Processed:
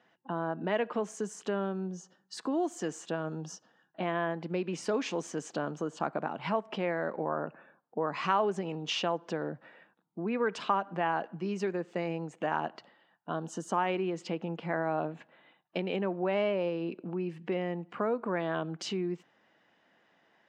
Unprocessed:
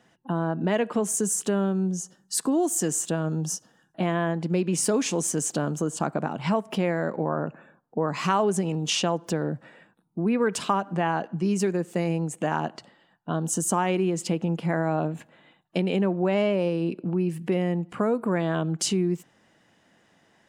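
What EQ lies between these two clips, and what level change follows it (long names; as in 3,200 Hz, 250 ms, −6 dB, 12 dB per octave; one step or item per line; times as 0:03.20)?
high-pass filter 530 Hz 6 dB per octave
high-frequency loss of the air 200 metres
−1.5 dB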